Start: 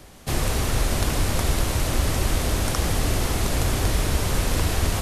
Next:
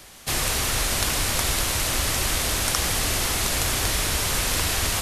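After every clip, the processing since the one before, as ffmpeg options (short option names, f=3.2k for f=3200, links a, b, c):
-af "tiltshelf=f=880:g=-6.5"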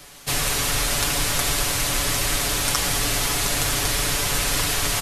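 -af "aecho=1:1:7:0.65"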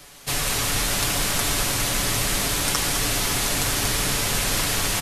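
-filter_complex "[0:a]asplit=8[a][b][c][d][e][f][g][h];[b]adelay=206,afreqshift=86,volume=-8.5dB[i];[c]adelay=412,afreqshift=172,volume=-13.1dB[j];[d]adelay=618,afreqshift=258,volume=-17.7dB[k];[e]adelay=824,afreqshift=344,volume=-22.2dB[l];[f]adelay=1030,afreqshift=430,volume=-26.8dB[m];[g]adelay=1236,afreqshift=516,volume=-31.4dB[n];[h]adelay=1442,afreqshift=602,volume=-36dB[o];[a][i][j][k][l][m][n][o]amix=inputs=8:normalize=0,volume=-1.5dB"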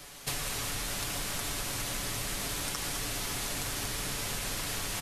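-af "acompressor=threshold=-29dB:ratio=12,volume=-2dB"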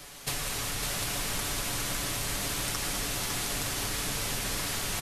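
-af "aecho=1:1:555:0.562,volume=1.5dB"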